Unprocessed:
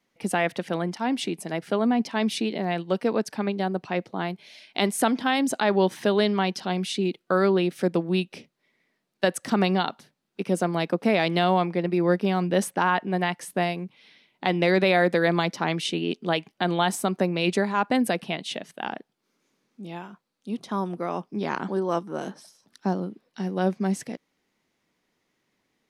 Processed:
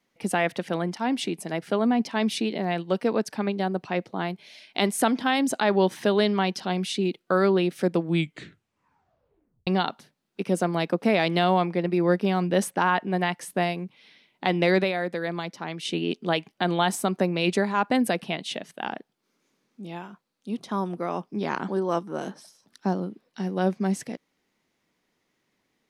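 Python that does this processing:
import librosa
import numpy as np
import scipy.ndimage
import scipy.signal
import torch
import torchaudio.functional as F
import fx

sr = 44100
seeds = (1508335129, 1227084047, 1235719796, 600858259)

y = fx.edit(x, sr, fx.tape_stop(start_s=8.01, length_s=1.66),
    fx.fade_down_up(start_s=14.77, length_s=1.17, db=-8.0, fade_s=0.15), tone=tone)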